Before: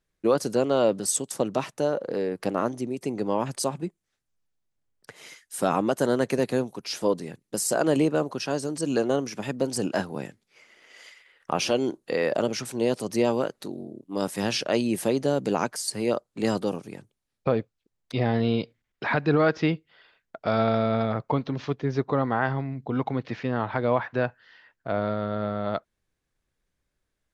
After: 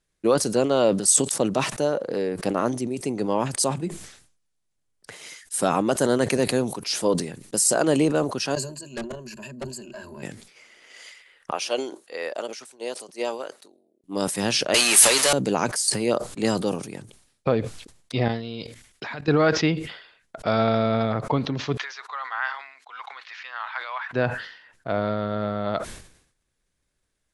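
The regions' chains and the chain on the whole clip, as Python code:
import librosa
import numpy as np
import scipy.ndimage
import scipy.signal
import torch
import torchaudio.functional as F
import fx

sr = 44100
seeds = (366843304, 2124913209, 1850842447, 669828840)

y = fx.chain(x, sr, fx.level_steps(step_db=22),
    fx.ripple_eq(per_octave=1.4, db=18),
    fx.tube_stage(drive_db=30.0, bias=0.25), at=(8.55, 10.23))
y = fx.chain(y, sr, fx.highpass(hz=470.0, slope=12),
    fx.upward_expand(threshold_db=-37.0, expansion=2.5), at=(11.51, 14.04))
y = fx.chain(y, sr, fx.crossing_spikes(level_db=-21.0),
    fx.highpass(hz=1200.0, slope=12),
    fx.leveller(passes=5), at=(14.74, 15.33))
y = fx.chain(y, sr, fx.high_shelf(hz=4300.0, db=12.0),
    fx.level_steps(step_db=18), at=(18.28, 19.28))
y = fx.chain(y, sr, fx.highpass(hz=1100.0, slope=24),
    fx.high_shelf(hz=7400.0, db=-9.0), at=(21.77, 24.11))
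y = scipy.signal.sosfilt(scipy.signal.cheby1(6, 1.0, 11000.0, 'lowpass', fs=sr, output='sos'), y)
y = fx.high_shelf(y, sr, hz=6100.0, db=8.5)
y = fx.sustainer(y, sr, db_per_s=85.0)
y = y * 10.0 ** (2.5 / 20.0)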